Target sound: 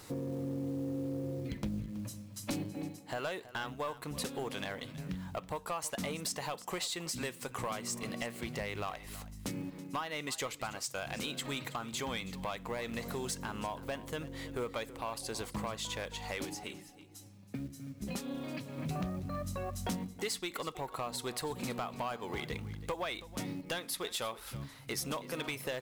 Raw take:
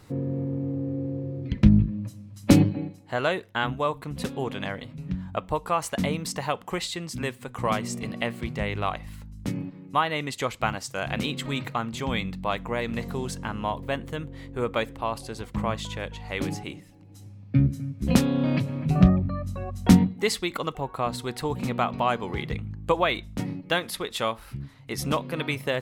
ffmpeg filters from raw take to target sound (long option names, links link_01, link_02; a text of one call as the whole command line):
ffmpeg -i in.wav -filter_complex "[0:a]bass=frequency=250:gain=-8,treble=frequency=4000:gain=7,acompressor=threshold=-35dB:ratio=4,acrusher=bits=6:mode=log:mix=0:aa=0.000001,asettb=1/sr,asplit=3[link_01][link_02][link_03];[link_01]atrim=end=16.454[link_04];[link_02]atrim=start=16.45:end=18.78,asetpts=PTS-STARTPTS,afade=type=in:duration=0.004:curve=qsin,afade=type=out:start_time=2.326:duration=0.004:curve=qsin,flanger=delay=2.7:depth=2.5:regen=48:speed=1.5:shape=sinusoidal[link_05];[link_03]atrim=start=18.776[link_06];[link_04][link_05]acrossfade=duration=0.004:curve1=hsin:curve2=qsin[link_07];[link_07][link_06]acrossfade=duration=0.004:curve1=qsin:curve2=hsin,asoftclip=type=tanh:threshold=-30dB,aecho=1:1:325:0.15,volume=1.5dB" out.wav